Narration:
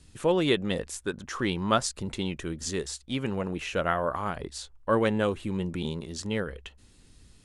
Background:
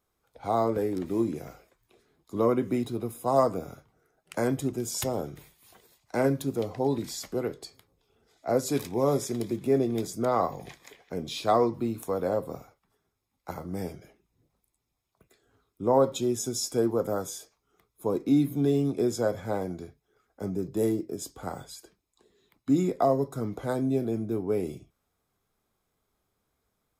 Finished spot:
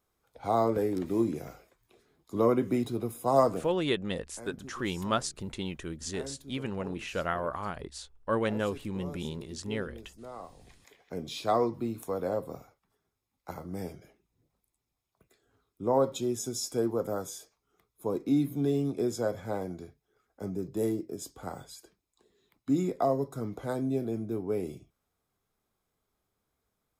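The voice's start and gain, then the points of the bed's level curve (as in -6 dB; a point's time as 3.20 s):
3.40 s, -4.5 dB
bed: 3.55 s -0.5 dB
3.79 s -18.5 dB
10.52 s -18.5 dB
11.07 s -3.5 dB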